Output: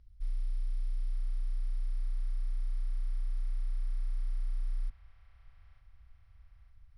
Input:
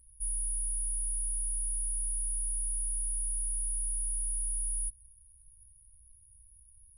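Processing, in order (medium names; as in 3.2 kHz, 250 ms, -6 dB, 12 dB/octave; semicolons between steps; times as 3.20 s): steep low-pass 5.8 kHz 48 dB/octave; feedback echo behind a band-pass 900 ms, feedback 56%, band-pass 1.2 kHz, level -8 dB; trim +5 dB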